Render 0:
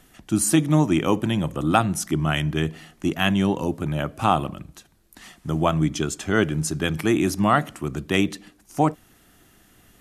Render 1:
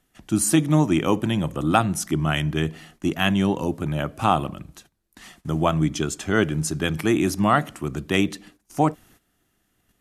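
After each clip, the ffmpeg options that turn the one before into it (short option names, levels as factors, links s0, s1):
-af "agate=range=0.2:threshold=0.00282:ratio=16:detection=peak"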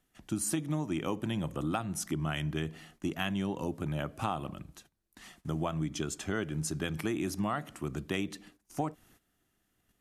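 -af "acompressor=threshold=0.0794:ratio=5,volume=0.447"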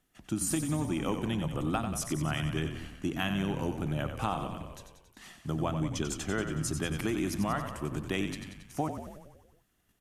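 -filter_complex "[0:a]asplit=9[s0][s1][s2][s3][s4][s5][s6][s7][s8];[s1]adelay=92,afreqshift=-35,volume=0.398[s9];[s2]adelay=184,afreqshift=-70,volume=0.251[s10];[s3]adelay=276,afreqshift=-105,volume=0.158[s11];[s4]adelay=368,afreqshift=-140,volume=0.1[s12];[s5]adelay=460,afreqshift=-175,volume=0.0624[s13];[s6]adelay=552,afreqshift=-210,volume=0.0394[s14];[s7]adelay=644,afreqshift=-245,volume=0.0248[s15];[s8]adelay=736,afreqshift=-280,volume=0.0157[s16];[s0][s9][s10][s11][s12][s13][s14][s15][s16]amix=inputs=9:normalize=0,volume=1.12"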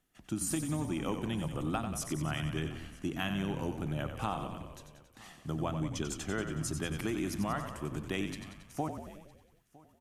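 -af "aecho=1:1:959:0.0668,volume=0.708"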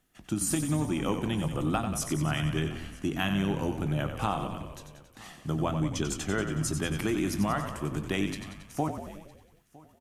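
-filter_complex "[0:a]asplit=2[s0][s1];[s1]adelay=20,volume=0.224[s2];[s0][s2]amix=inputs=2:normalize=0,volume=1.78"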